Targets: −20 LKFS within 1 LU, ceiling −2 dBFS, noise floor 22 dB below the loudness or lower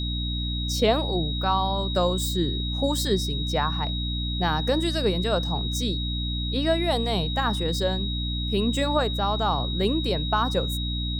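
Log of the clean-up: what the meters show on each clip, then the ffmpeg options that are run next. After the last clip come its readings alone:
mains hum 60 Hz; hum harmonics up to 300 Hz; level of the hum −26 dBFS; interfering tone 3,800 Hz; level of the tone −31 dBFS; integrated loudness −25.0 LKFS; sample peak −9.0 dBFS; target loudness −20.0 LKFS
→ -af "bandreject=frequency=60:width_type=h:width=6,bandreject=frequency=120:width_type=h:width=6,bandreject=frequency=180:width_type=h:width=6,bandreject=frequency=240:width_type=h:width=6,bandreject=frequency=300:width_type=h:width=6"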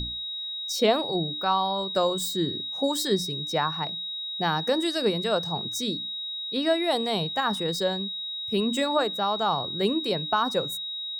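mains hum none found; interfering tone 3,800 Hz; level of the tone −31 dBFS
→ -af "bandreject=frequency=3800:width=30"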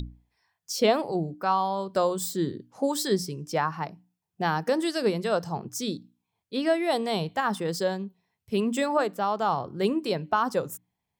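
interfering tone none found; integrated loudness −27.5 LKFS; sample peak −10.5 dBFS; target loudness −20.0 LKFS
→ -af "volume=7.5dB"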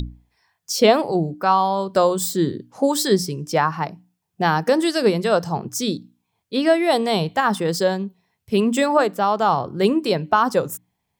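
integrated loudness −20.0 LKFS; sample peak −3.0 dBFS; background noise floor −76 dBFS

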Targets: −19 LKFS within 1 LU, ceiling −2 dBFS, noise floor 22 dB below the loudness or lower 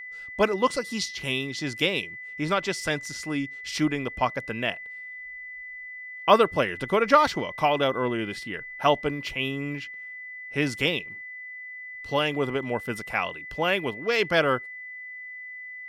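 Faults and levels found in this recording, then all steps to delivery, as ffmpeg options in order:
interfering tone 2,000 Hz; level of the tone −37 dBFS; integrated loudness −26.0 LKFS; sample peak −4.5 dBFS; target loudness −19.0 LKFS
→ -af "bandreject=frequency=2000:width=30"
-af "volume=7dB,alimiter=limit=-2dB:level=0:latency=1"

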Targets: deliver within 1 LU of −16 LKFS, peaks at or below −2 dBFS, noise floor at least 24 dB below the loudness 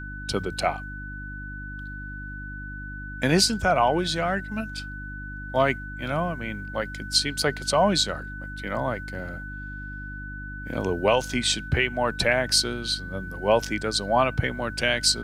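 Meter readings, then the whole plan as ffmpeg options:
mains hum 50 Hz; hum harmonics up to 300 Hz; level of the hum −36 dBFS; interfering tone 1,500 Hz; level of the tone −37 dBFS; integrated loudness −25.0 LKFS; sample peak −7.5 dBFS; target loudness −16.0 LKFS
→ -af "bandreject=frequency=50:width_type=h:width=4,bandreject=frequency=100:width_type=h:width=4,bandreject=frequency=150:width_type=h:width=4,bandreject=frequency=200:width_type=h:width=4,bandreject=frequency=250:width_type=h:width=4,bandreject=frequency=300:width_type=h:width=4"
-af "bandreject=frequency=1500:width=30"
-af "volume=9dB,alimiter=limit=-2dB:level=0:latency=1"

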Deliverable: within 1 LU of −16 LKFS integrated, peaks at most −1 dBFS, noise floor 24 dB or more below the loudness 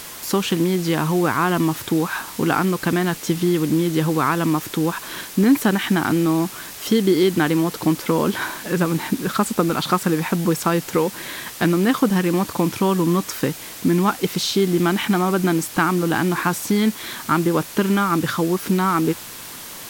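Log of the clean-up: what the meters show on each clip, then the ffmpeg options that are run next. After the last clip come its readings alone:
background noise floor −36 dBFS; target noise floor −45 dBFS; integrated loudness −20.5 LKFS; sample peak −4.5 dBFS; target loudness −16.0 LKFS
→ -af "afftdn=noise_reduction=9:noise_floor=-36"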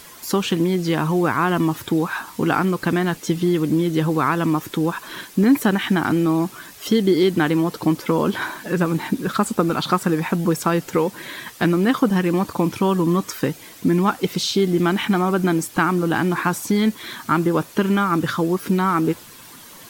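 background noise floor −43 dBFS; target noise floor −45 dBFS
→ -af "afftdn=noise_reduction=6:noise_floor=-43"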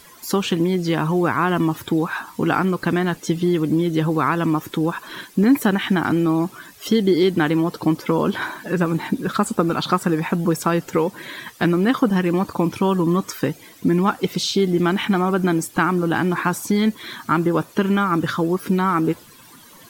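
background noise floor −46 dBFS; integrated loudness −20.5 LKFS; sample peak −4.5 dBFS; target loudness −16.0 LKFS
→ -af "volume=4.5dB,alimiter=limit=-1dB:level=0:latency=1"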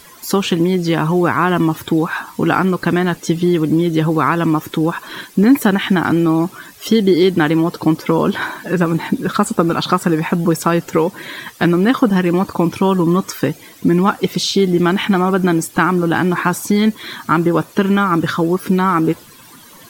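integrated loudness −16.0 LKFS; sample peak −1.0 dBFS; background noise floor −42 dBFS

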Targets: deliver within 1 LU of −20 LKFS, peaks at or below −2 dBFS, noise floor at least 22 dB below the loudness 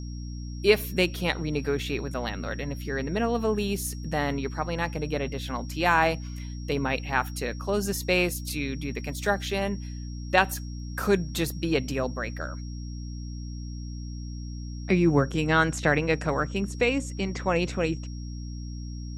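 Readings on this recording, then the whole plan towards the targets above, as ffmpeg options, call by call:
mains hum 60 Hz; hum harmonics up to 300 Hz; level of the hum −33 dBFS; interfering tone 5,600 Hz; level of the tone −49 dBFS; integrated loudness −28.0 LKFS; sample peak −5.0 dBFS; target loudness −20.0 LKFS
→ -af "bandreject=frequency=60:width_type=h:width=4,bandreject=frequency=120:width_type=h:width=4,bandreject=frequency=180:width_type=h:width=4,bandreject=frequency=240:width_type=h:width=4,bandreject=frequency=300:width_type=h:width=4"
-af "bandreject=frequency=5600:width=30"
-af "volume=8dB,alimiter=limit=-2dB:level=0:latency=1"

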